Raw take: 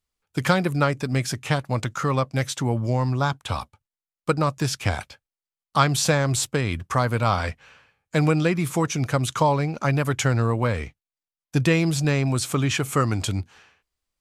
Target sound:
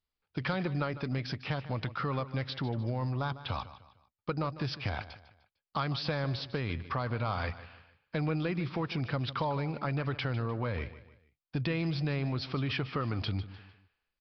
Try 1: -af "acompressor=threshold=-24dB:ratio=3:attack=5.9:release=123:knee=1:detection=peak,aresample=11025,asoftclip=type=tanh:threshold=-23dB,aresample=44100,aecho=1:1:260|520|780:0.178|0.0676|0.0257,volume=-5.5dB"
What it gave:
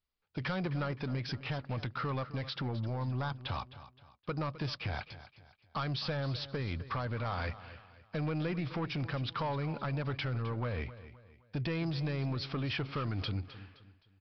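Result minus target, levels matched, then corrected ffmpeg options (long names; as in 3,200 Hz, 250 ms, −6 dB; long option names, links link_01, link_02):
echo 109 ms late; soft clipping: distortion +17 dB
-af "acompressor=threshold=-24dB:ratio=3:attack=5.9:release=123:knee=1:detection=peak,aresample=11025,asoftclip=type=tanh:threshold=-11dB,aresample=44100,aecho=1:1:151|302|453:0.178|0.0676|0.0257,volume=-5.5dB"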